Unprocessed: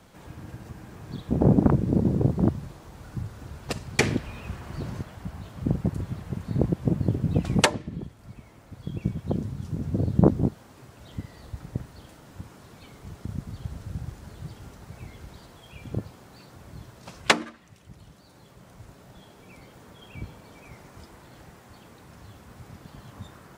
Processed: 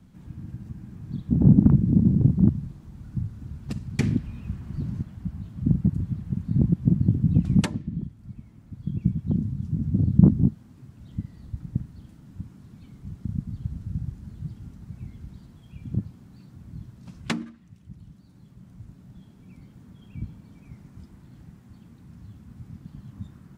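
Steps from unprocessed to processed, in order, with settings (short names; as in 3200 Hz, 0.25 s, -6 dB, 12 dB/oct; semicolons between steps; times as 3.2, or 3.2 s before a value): resonant low shelf 330 Hz +14 dB, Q 1.5; gain -11.5 dB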